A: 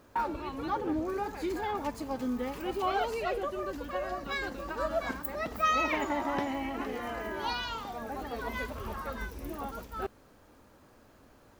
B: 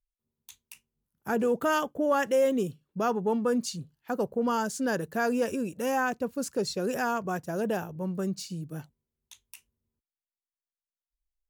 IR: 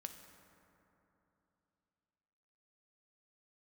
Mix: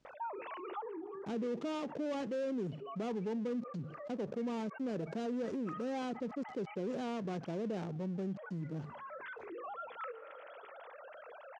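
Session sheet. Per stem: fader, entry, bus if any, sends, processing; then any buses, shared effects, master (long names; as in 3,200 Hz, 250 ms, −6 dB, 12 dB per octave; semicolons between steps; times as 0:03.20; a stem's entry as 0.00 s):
−15.5 dB, 0.05 s, send −18.5 dB, three sine waves on the formant tracks; mains-hum notches 50/100/150/200/250/300/350/400/450 Hz; automatic ducking −20 dB, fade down 0.45 s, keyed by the second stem
0:09.70 −10 dB → 0:09.95 −22 dB, 0.00 s, no send, gap after every zero crossing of 0.27 ms; high-pass filter 190 Hz 12 dB per octave; tilt shelving filter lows +9 dB, about 760 Hz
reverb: on, RT60 3.2 s, pre-delay 3 ms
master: transistor ladder low-pass 7,400 Hz, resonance 25%; envelope flattener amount 70%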